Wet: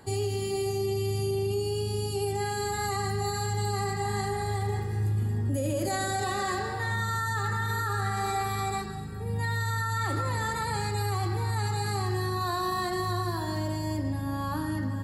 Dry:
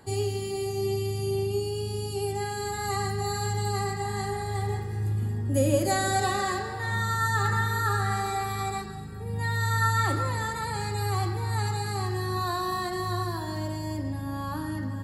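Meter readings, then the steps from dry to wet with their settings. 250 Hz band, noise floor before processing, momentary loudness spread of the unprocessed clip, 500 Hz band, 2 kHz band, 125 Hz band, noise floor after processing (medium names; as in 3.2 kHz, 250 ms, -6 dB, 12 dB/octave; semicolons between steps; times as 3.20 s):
-0.5 dB, -34 dBFS, 8 LU, -1.0 dB, -2.0 dB, -0.5 dB, -32 dBFS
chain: peak limiter -22.5 dBFS, peak gain reduction 11 dB; trim +1.5 dB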